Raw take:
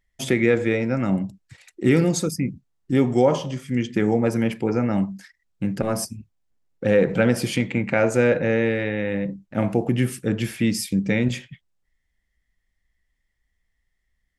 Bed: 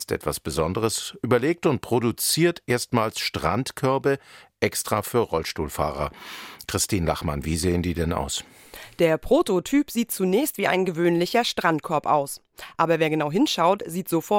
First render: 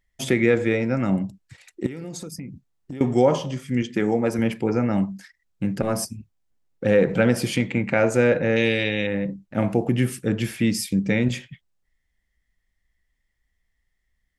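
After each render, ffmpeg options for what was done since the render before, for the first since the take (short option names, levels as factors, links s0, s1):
-filter_complex "[0:a]asettb=1/sr,asplit=3[s0][s1][s2];[s0]atrim=end=1.864[s3];[s1]atrim=start=1.86:end=3.01,asetpts=PTS-STARTPTS,afade=t=in:d=0.004:c=qsin,afade=t=out:st=1.146:d=0.004:c=qsin,acompressor=threshold=0.0316:ratio=16:attack=3.2:release=140:knee=1:detection=peak[s4];[s2]atrim=start=3.006[s5];[s3][s4]acrossfade=d=0.004:c1=hsin:c2=qsin[s6];[s6][s5]acrossfade=d=0.004:c1=qsin:c2=hsin,asettb=1/sr,asplit=3[s7][s8][s9];[s7]atrim=end=3.824[s10];[s8]atrim=start=3.82:end=4.39,asetpts=PTS-STARTPTS,afade=t=in:d=0.004:c=qsin,afade=t=out:st=0.566:d=0.004:c=qsin,highpass=f=190:p=1[s11];[s9]atrim=start=4.386[s12];[s10][s11]acrossfade=d=0.004:c1=hsin:c2=qsin[s13];[s13][s12]acrossfade=d=0.004:c1=qsin:c2=hsin,asettb=1/sr,asplit=3[s14][s15][s16];[s14]atrim=end=8.564[s17];[s15]atrim=start=8.56:end=9.07,asetpts=PTS-STARTPTS,afade=t=in:d=0.004:c=qsin,afade=t=out:st=0.506:d=0.004:c=qsin,highshelf=f=2200:t=q:w=1.5:g=11[s18];[s16]atrim=start=9.066[s19];[s17][s18]acrossfade=d=0.004:c1=hsin:c2=qsin[s20];[s20][s19]acrossfade=d=0.004:c1=qsin:c2=hsin"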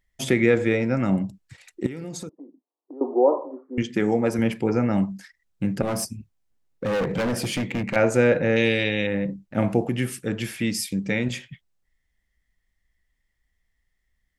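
-filter_complex "[0:a]asettb=1/sr,asplit=3[s0][s1][s2];[s0]atrim=end=2.294[s3];[s1]atrim=start=2.29:end=3.78,asetpts=PTS-STARTPTS,afade=t=in:d=0.004:c=qsin,afade=t=out:st=1.486:d=0.004:c=qsin,asuperpass=centerf=560:order=12:qfactor=0.67[s4];[s2]atrim=start=3.776[s5];[s3][s4]acrossfade=d=0.004:c1=hsin:c2=qsin[s6];[s6][s5]acrossfade=d=0.004:c1=qsin:c2=hsin,asettb=1/sr,asplit=3[s7][s8][s9];[s7]atrim=end=5.854[s10];[s8]atrim=start=5.85:end=7.96,asetpts=PTS-STARTPTS,afade=t=in:d=0.004:c=qsin,afade=t=out:st=2.106:d=0.004:c=qsin,asoftclip=type=hard:threshold=0.0841[s11];[s9]atrim=start=7.956[s12];[s10][s11]acrossfade=d=0.004:c1=hsin:c2=qsin[s13];[s13][s12]acrossfade=d=0.004:c1=qsin:c2=hsin,asettb=1/sr,asplit=3[s14][s15][s16];[s14]atrim=end=9.864[s17];[s15]atrim=start=9.86:end=11.47,asetpts=PTS-STARTPTS,afade=t=in:d=0.004:c=qsin,afade=t=out:st=1.606:d=0.004:c=qsin,lowshelf=f=490:g=-5.5[s18];[s16]atrim=start=11.466[s19];[s17][s18]acrossfade=d=0.004:c1=hsin:c2=qsin[s20];[s20][s19]acrossfade=d=0.004:c1=qsin:c2=hsin"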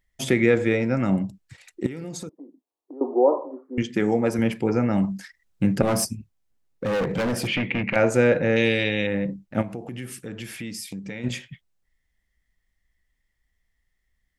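-filter_complex "[0:a]asplit=3[s0][s1][s2];[s0]afade=t=out:st=7.46:d=0.02[s3];[s1]lowpass=f=2600:t=q:w=2.4,afade=t=in:st=7.46:d=0.02,afade=t=out:st=7.94:d=0.02[s4];[s2]afade=t=in:st=7.94:d=0.02[s5];[s3][s4][s5]amix=inputs=3:normalize=0,asplit=3[s6][s7][s8];[s6]afade=t=out:st=9.61:d=0.02[s9];[s7]acompressor=threshold=0.0224:ratio=3:attack=3.2:release=140:knee=1:detection=peak,afade=t=in:st=9.61:d=0.02,afade=t=out:st=11.23:d=0.02[s10];[s8]afade=t=in:st=11.23:d=0.02[s11];[s9][s10][s11]amix=inputs=3:normalize=0,asplit=3[s12][s13][s14];[s12]atrim=end=5.042[s15];[s13]atrim=start=5.038:end=6.152,asetpts=PTS-STARTPTS,volume=1.58[s16];[s14]atrim=start=6.148[s17];[s15][s16]acrossfade=d=0.004:c1=hsin:c2=hsin[s18];[s18][s17]acrossfade=d=0.004:c1=hsin:c2=hsin"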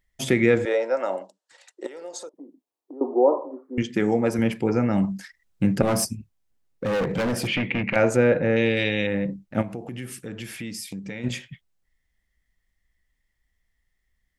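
-filter_complex "[0:a]asettb=1/sr,asplit=3[s0][s1][s2];[s0]atrim=end=0.654[s3];[s1]atrim=start=0.65:end=2.34,asetpts=PTS-STARTPTS,afade=t=in:d=0.004:c=qsin,afade=t=out:st=1.686:d=0.004:c=qsin,highpass=f=430:w=0.5412,highpass=f=430:w=1.3066,equalizer=f=570:t=q:w=4:g=9,equalizer=f=910:t=q:w=4:g=6,equalizer=f=2300:t=q:w=4:g=-9,lowpass=f=9500:w=0.5412,lowpass=f=9500:w=1.3066[s4];[s2]atrim=start=2.336[s5];[s3][s4]acrossfade=d=0.004:c1=hsin:c2=qsin[s6];[s6][s5]acrossfade=d=0.004:c1=qsin:c2=hsin,asettb=1/sr,asplit=3[s7][s8][s9];[s7]atrim=end=8.164[s10];[s8]atrim=start=8.16:end=8.77,asetpts=PTS-STARTPTS,afade=t=in:d=0.004:c=qsin,afade=t=out:st=0.606:d=0.004:c=qsin,lowpass=f=2300:p=1[s11];[s9]atrim=start=8.766[s12];[s10][s11]acrossfade=d=0.004:c1=hsin:c2=qsin[s13];[s13][s12]acrossfade=d=0.004:c1=qsin:c2=hsin"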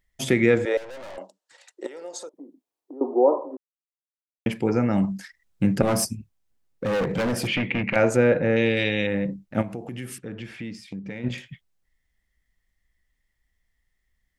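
-filter_complex "[0:a]asettb=1/sr,asplit=3[s0][s1][s2];[s0]atrim=end=0.774[s3];[s1]atrim=start=0.77:end=1.18,asetpts=PTS-STARTPTS,afade=t=in:d=0.004:c=qsin,afade=t=out:st=0.406:d=0.004:c=qsin,aeval=exprs='(tanh(79.4*val(0)+0.6)-tanh(0.6))/79.4':c=same[s4];[s2]atrim=start=1.176[s5];[s3][s4]acrossfade=d=0.004:c1=hsin:c2=qsin[s6];[s6][s5]acrossfade=d=0.004:c1=qsin:c2=hsin,asettb=1/sr,asplit=3[s7][s8][s9];[s7]atrim=end=10.184[s10];[s8]atrim=start=10.18:end=11.38,asetpts=PTS-STARTPTS,afade=t=in:d=0.004:c=qsin,afade=t=out:st=1.196:d=0.004:c=qsin,adynamicsmooth=sensitivity=1:basefreq=3400[s11];[s9]atrim=start=11.376[s12];[s10][s11]acrossfade=d=0.004:c1=hsin:c2=qsin[s13];[s13][s12]acrossfade=d=0.004:c1=qsin:c2=hsin,asplit=3[s14][s15][s16];[s14]atrim=end=3.57,asetpts=PTS-STARTPTS,afade=t=out:st=3.566:d=0.004:c=hsin[s17];[s15]atrim=start=3.57:end=4.46,asetpts=PTS-STARTPTS,volume=0[s18];[s16]atrim=start=4.46,asetpts=PTS-STARTPTS,afade=t=in:d=0.004:c=hsin[s19];[s17][s18][s19]concat=n=3:v=0:a=1"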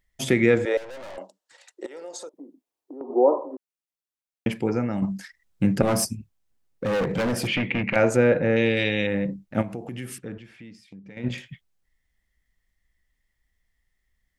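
-filter_complex "[0:a]asettb=1/sr,asplit=3[s0][s1][s2];[s0]atrim=end=1.854[s3];[s1]atrim=start=1.85:end=3.1,asetpts=PTS-STARTPTS,afade=t=in:d=0.004:c=qsin,afade=t=out:st=1.246:d=0.004:c=qsin,acompressor=threshold=0.0251:ratio=6:attack=3.2:release=140:knee=1:detection=peak[s4];[s2]atrim=start=3.096[s5];[s3][s4]acrossfade=d=0.004:c1=hsin:c2=qsin[s6];[s6][s5]acrossfade=d=0.004:c1=qsin:c2=hsin,asplit=4[s7][s8][s9][s10];[s7]atrim=end=5.02,asetpts=PTS-STARTPTS,afade=t=out:st=4.52:d=0.5:silence=0.446684[s11];[s8]atrim=start=5.02:end=10.382,asetpts=PTS-STARTPTS,afade=t=in:d=0.004:c=hsin:silence=0.446684[s12];[s9]atrim=start=10.378:end=11.172,asetpts=PTS-STARTPTS,volume=0.335[s13];[s10]atrim=start=11.168[s14];[s11][s12]concat=n=2:v=0:a=1[s15];[s15][s13]acrossfade=d=0.004:c1=hsin:c2=hsin[s16];[s16][s14]acrossfade=d=0.004:c1=hsin:c2=hsin"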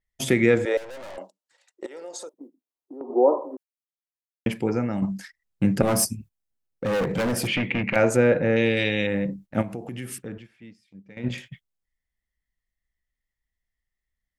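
-af "agate=range=0.282:threshold=0.00708:ratio=16:detection=peak,adynamicequalizer=threshold=0.00562:dfrequency=7800:dqfactor=0.7:tfrequency=7800:tqfactor=0.7:attack=5:release=100:ratio=0.375:range=3:mode=boostabove:tftype=highshelf"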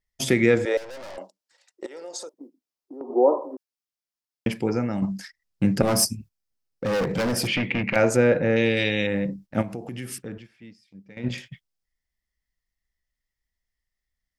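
-af "equalizer=f=5100:w=2.7:g=6.5"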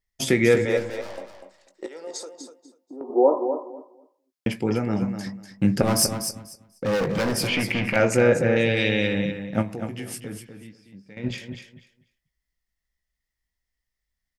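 -filter_complex "[0:a]asplit=2[s0][s1];[s1]adelay=19,volume=0.282[s2];[s0][s2]amix=inputs=2:normalize=0,aecho=1:1:245|490|735:0.376|0.0677|0.0122"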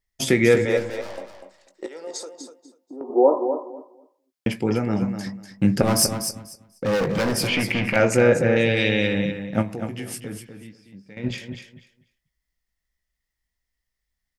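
-af "volume=1.19"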